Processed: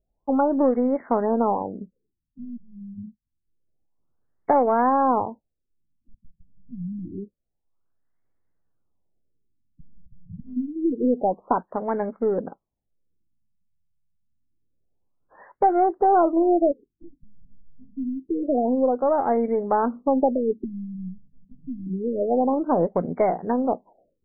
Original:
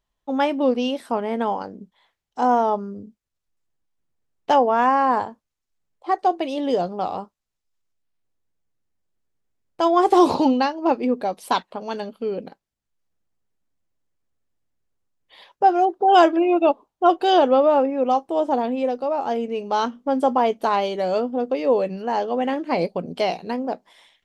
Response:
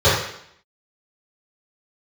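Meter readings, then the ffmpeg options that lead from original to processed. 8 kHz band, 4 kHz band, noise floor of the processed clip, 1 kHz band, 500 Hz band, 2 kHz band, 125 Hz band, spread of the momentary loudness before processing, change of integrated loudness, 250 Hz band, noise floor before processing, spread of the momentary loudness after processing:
no reading, under -40 dB, -79 dBFS, -4.5 dB, -3.0 dB, -10.0 dB, +2.5 dB, 13 LU, -2.0 dB, -1.0 dB, -82 dBFS, 19 LU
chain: -filter_complex "[0:a]acrossover=split=750|1600[s0][s1][s2];[s0]acompressor=threshold=0.0794:ratio=4[s3];[s1]acompressor=threshold=0.0251:ratio=4[s4];[s2]acompressor=threshold=0.00501:ratio=4[s5];[s3][s4][s5]amix=inputs=3:normalize=0,aeval=exprs='0.316*(cos(1*acos(clip(val(0)/0.316,-1,1)))-cos(1*PI/2))+0.00708*(cos(6*acos(clip(val(0)/0.316,-1,1)))-cos(6*PI/2))':c=same,afftfilt=real='re*lt(b*sr/1024,200*pow(2300/200,0.5+0.5*sin(2*PI*0.27*pts/sr)))':imag='im*lt(b*sr/1024,200*pow(2300/200,0.5+0.5*sin(2*PI*0.27*pts/sr)))':win_size=1024:overlap=0.75,volume=1.58"

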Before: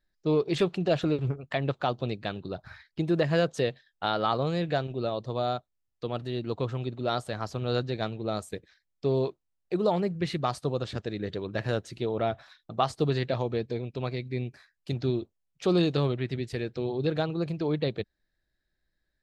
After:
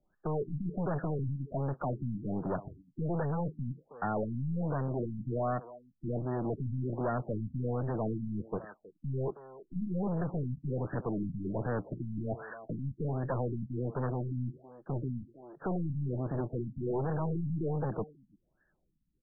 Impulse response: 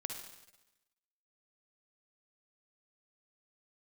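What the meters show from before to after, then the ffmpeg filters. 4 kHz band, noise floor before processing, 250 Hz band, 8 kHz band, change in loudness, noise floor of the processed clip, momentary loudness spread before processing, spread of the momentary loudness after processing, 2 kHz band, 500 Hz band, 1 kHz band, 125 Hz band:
under -40 dB, -80 dBFS, -4.5 dB, under -30 dB, -5.5 dB, -76 dBFS, 9 LU, 7 LU, -10.5 dB, -8.0 dB, -7.0 dB, -2.0 dB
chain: -filter_complex "[0:a]equalizer=f=160:w=1.6:g=8,acrossover=split=180|520[s0][s1][s2];[s0]acompressor=threshold=0.0501:ratio=4[s3];[s1]acompressor=threshold=0.0282:ratio=4[s4];[s2]acompressor=threshold=0.0112:ratio=4[s5];[s3][s4][s5]amix=inputs=3:normalize=0,alimiter=limit=0.0794:level=0:latency=1:release=13,acontrast=87,aeval=exprs='(tanh(25.1*val(0)+0.5)-tanh(0.5))/25.1':c=same,asplit=2[s6][s7];[s7]adelay=320,highpass=300,lowpass=3400,asoftclip=type=hard:threshold=0.0224,volume=0.178[s8];[s6][s8]amix=inputs=2:normalize=0,asplit=2[s9][s10];[s10]highpass=f=720:p=1,volume=4.47,asoftclip=type=tanh:threshold=0.0631[s11];[s9][s11]amix=inputs=2:normalize=0,lowpass=f=5800:p=1,volume=0.501,afftfilt=real='re*lt(b*sr/1024,270*pow(1900/270,0.5+0.5*sin(2*PI*1.3*pts/sr)))':imag='im*lt(b*sr/1024,270*pow(1900/270,0.5+0.5*sin(2*PI*1.3*pts/sr)))':win_size=1024:overlap=0.75"

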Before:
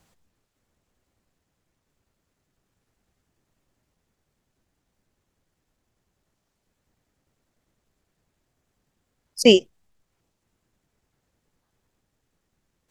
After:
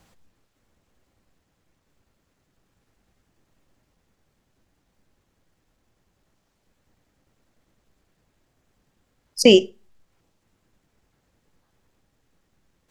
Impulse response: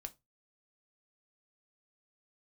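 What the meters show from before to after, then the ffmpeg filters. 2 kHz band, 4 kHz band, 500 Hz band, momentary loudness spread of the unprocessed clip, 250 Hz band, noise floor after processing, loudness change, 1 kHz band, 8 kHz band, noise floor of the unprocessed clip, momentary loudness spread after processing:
+1.0 dB, +1.0 dB, +2.0 dB, 3 LU, +2.0 dB, -71 dBFS, +1.5 dB, +0.5 dB, +2.5 dB, -78 dBFS, 3 LU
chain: -filter_complex "[0:a]asplit=2[s0][s1];[1:a]atrim=start_sample=2205,asetrate=29988,aresample=44100,lowpass=6700[s2];[s1][s2]afir=irnorm=-1:irlink=0,volume=0.531[s3];[s0][s3]amix=inputs=2:normalize=0,alimiter=level_in=1.58:limit=0.891:release=50:level=0:latency=1,volume=0.891"

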